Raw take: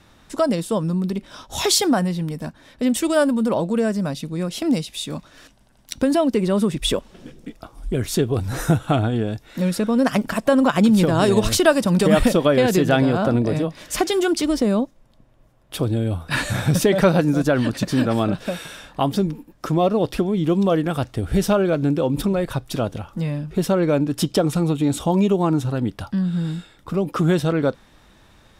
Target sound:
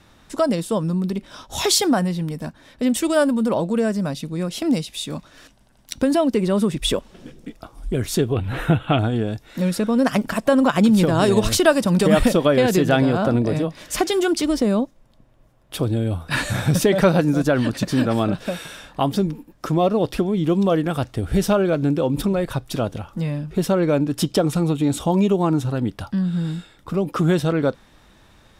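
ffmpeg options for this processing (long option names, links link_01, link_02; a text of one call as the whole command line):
ffmpeg -i in.wav -filter_complex "[0:a]asettb=1/sr,asplit=3[link_01][link_02][link_03];[link_01]atrim=end=8.334[link_04];[link_02]atrim=start=8.33:end=8.99,asetpts=PTS-STARTPTS,afade=type=in:duration=0.004:curve=qsin,afade=type=out:start_time=0.656:duration=0.004:curve=qsin,highshelf=frequency=4100:width_type=q:width=3:gain=-11.5[link_05];[link_03]atrim=start=8.986[link_06];[link_04][link_05]acrossfade=duration=0.004:curve1=hsin:curve2=qsin[link_07];[link_07][link_06]acrossfade=duration=0.004:curve1=qsin:curve2=hsin" out.wav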